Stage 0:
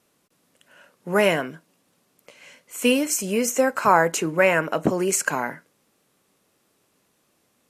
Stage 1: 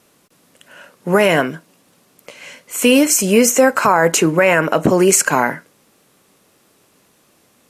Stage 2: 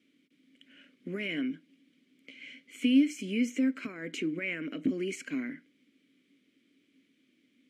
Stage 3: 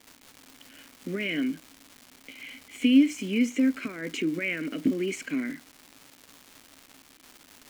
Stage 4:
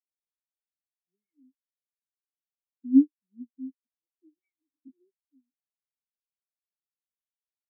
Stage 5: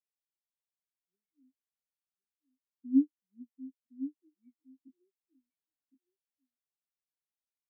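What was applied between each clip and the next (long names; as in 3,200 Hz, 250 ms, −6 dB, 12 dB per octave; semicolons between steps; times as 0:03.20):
boost into a limiter +12 dB; level −1 dB
downward compressor 1.5 to 1, threshold −26 dBFS, peak gain reduction 7 dB; formant filter i
surface crackle 480 per second −42 dBFS; level +4.5 dB
every bin expanded away from the loudest bin 4 to 1; level +1.5 dB
single-tap delay 1,063 ms −13 dB; level −7 dB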